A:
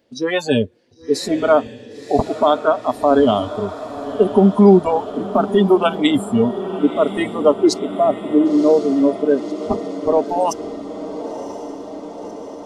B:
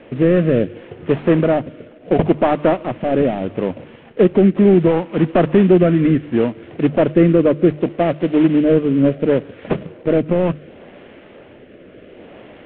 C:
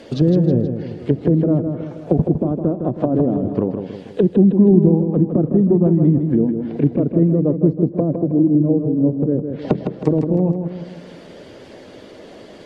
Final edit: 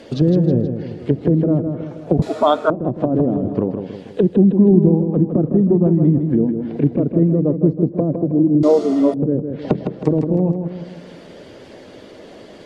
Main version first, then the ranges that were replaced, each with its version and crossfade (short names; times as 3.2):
C
2.22–2.7 from A
8.63–9.14 from A
not used: B